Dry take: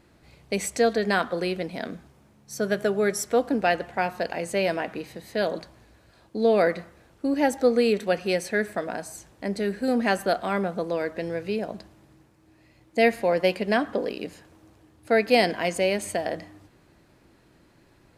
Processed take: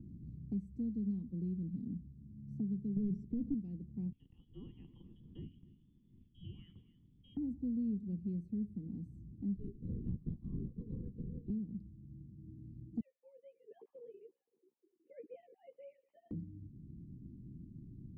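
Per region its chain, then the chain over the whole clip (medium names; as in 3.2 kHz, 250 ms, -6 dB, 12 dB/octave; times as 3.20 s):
2.96–3.54 s: waveshaping leveller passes 3 + distance through air 140 m
4.12–7.37 s: frequency inversion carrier 3.5 kHz + delay 273 ms -21 dB
9.56–11.50 s: static phaser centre 610 Hz, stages 6 + comb 1.8 ms, depth 94% + LPC vocoder at 8 kHz whisper
13.00–16.31 s: formants replaced by sine waves + high-pass 610 Hz + doubling 13 ms -4 dB
whole clip: inverse Chebyshev low-pass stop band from 580 Hz, stop band 50 dB; three bands compressed up and down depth 70%; trim -2.5 dB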